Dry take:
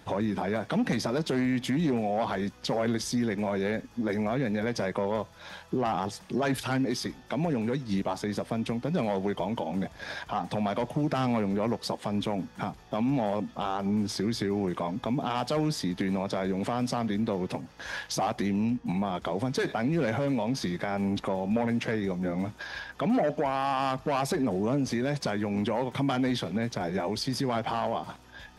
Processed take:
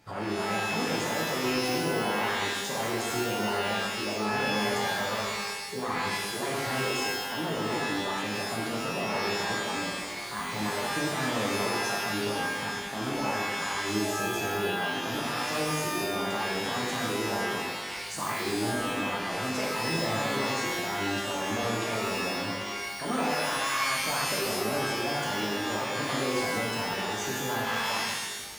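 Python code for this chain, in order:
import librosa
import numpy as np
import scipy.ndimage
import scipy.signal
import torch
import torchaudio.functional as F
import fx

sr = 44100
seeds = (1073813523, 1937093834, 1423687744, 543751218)

y = fx.formant_shift(x, sr, semitones=5)
y = fx.rev_shimmer(y, sr, seeds[0], rt60_s=1.2, semitones=12, shimmer_db=-2, drr_db=-4.0)
y = y * 10.0 ** (-9.0 / 20.0)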